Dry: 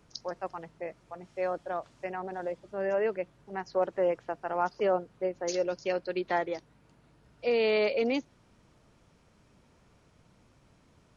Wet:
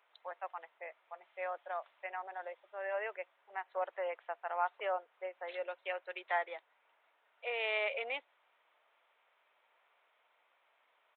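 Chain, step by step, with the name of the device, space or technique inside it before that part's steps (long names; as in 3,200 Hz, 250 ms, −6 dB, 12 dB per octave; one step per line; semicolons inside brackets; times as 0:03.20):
musical greeting card (downsampling to 8,000 Hz; high-pass filter 650 Hz 24 dB per octave; parametric band 2,100 Hz +4 dB 0.41 octaves)
level −3.5 dB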